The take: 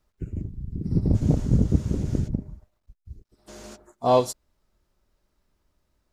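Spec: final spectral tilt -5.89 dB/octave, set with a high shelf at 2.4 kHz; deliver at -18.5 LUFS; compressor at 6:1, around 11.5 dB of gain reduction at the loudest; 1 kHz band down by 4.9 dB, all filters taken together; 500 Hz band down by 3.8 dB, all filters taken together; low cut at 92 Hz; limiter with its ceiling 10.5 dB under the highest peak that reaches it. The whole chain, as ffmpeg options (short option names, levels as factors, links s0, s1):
-af "highpass=92,equalizer=f=500:t=o:g=-3,equalizer=f=1000:t=o:g=-6,highshelf=f=2400:g=4,acompressor=threshold=0.0316:ratio=6,volume=15,alimiter=limit=0.447:level=0:latency=1"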